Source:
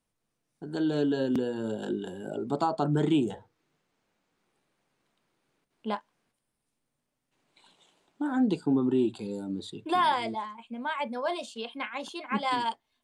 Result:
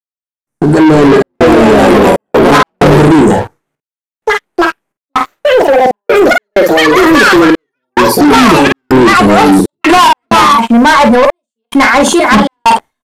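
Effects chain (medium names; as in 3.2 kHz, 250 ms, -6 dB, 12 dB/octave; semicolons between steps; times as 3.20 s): gate with hold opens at -53 dBFS; high-order bell 3.6 kHz -10 dB 1.3 oct; in parallel at +1 dB: gain riding within 3 dB 0.5 s; on the sum: ever faster or slower copies 449 ms, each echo +4 st, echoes 3; hard clipper -19.5 dBFS, distortion -10 dB; trance gate "..xxx.xxx.x.xxxx" 64 bpm -60 dB; on a send: early reflections 14 ms -14.5 dB, 48 ms -9 dB; on the sum: waveshaping leveller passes 3; resampled via 32 kHz; loudness maximiser +24 dB; trim -1 dB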